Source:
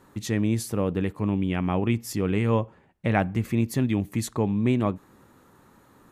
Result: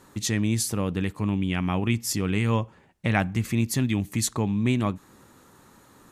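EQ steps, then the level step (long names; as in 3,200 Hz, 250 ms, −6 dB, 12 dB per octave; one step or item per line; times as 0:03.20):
dynamic equaliser 490 Hz, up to −6 dB, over −36 dBFS, Q 0.96
parametric band 6,700 Hz +8 dB 2.2 octaves
+1.0 dB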